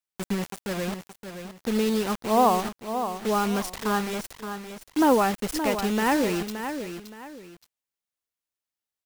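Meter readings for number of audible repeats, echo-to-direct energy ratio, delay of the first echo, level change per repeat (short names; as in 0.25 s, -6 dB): 2, -8.5 dB, 0.571 s, -10.0 dB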